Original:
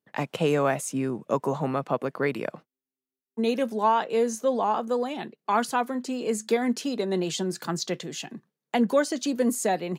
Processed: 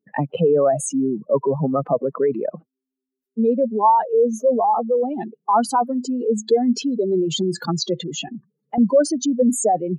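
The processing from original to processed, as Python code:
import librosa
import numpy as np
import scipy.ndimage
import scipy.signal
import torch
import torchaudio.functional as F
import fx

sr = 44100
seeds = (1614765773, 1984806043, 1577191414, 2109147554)

y = fx.spec_expand(x, sr, power=2.7)
y = fx.band_squash(y, sr, depth_pct=70, at=(8.28, 8.78))
y = F.gain(torch.from_numpy(y), 7.5).numpy()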